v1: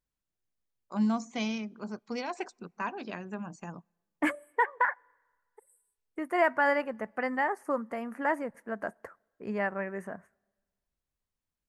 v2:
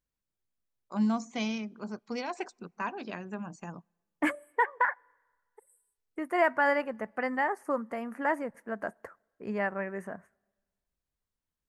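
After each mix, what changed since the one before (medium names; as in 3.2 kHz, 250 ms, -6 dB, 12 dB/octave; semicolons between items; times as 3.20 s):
no change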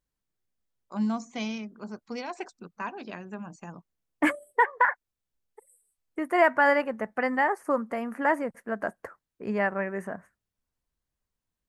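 second voice +5.0 dB; reverb: off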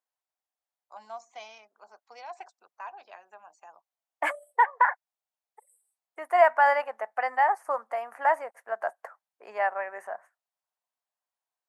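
second voice +6.5 dB; master: add ladder high-pass 640 Hz, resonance 55%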